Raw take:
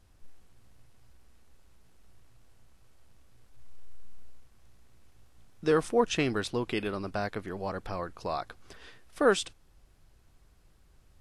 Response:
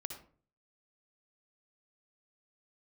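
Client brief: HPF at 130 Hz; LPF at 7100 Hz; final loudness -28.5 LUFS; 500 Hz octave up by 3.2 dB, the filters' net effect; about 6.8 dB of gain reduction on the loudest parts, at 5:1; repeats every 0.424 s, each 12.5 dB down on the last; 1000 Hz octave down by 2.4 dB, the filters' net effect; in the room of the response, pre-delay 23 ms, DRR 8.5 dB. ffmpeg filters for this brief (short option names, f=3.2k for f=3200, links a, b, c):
-filter_complex "[0:a]highpass=130,lowpass=7.1k,equalizer=f=500:t=o:g=4.5,equalizer=f=1k:t=o:g=-5,acompressor=threshold=-24dB:ratio=5,aecho=1:1:424|848|1272:0.237|0.0569|0.0137,asplit=2[a][b];[1:a]atrim=start_sample=2205,adelay=23[c];[b][c]afir=irnorm=-1:irlink=0,volume=-6.5dB[d];[a][d]amix=inputs=2:normalize=0,volume=4dB"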